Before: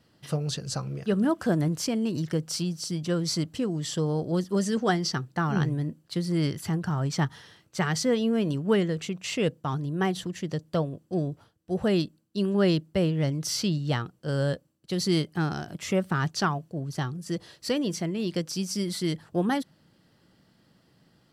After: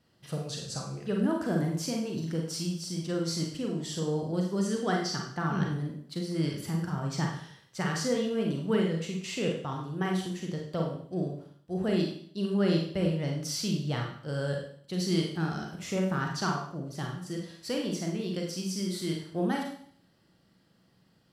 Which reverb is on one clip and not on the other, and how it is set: Schroeder reverb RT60 0.58 s, combs from 33 ms, DRR 0 dB; gain -6.5 dB

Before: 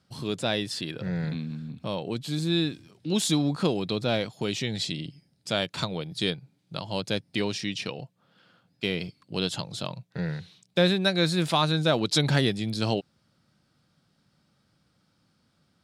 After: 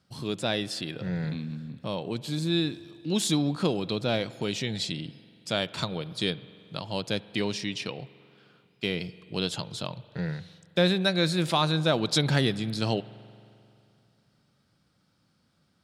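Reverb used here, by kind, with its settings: spring tank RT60 2.6 s, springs 44 ms, chirp 35 ms, DRR 17.5 dB; gain -1 dB

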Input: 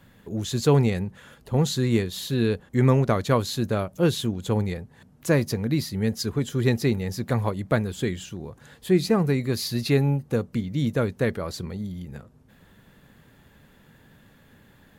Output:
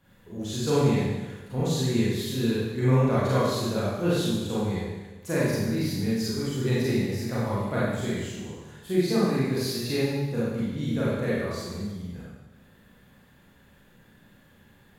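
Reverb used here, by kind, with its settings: Schroeder reverb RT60 1.2 s, combs from 31 ms, DRR -9 dB; gain -11 dB

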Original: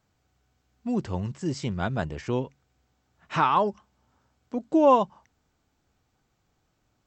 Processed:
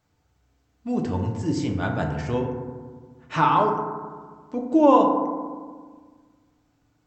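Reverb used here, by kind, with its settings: FDN reverb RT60 1.6 s, low-frequency decay 1.3×, high-frequency decay 0.3×, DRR 1 dB

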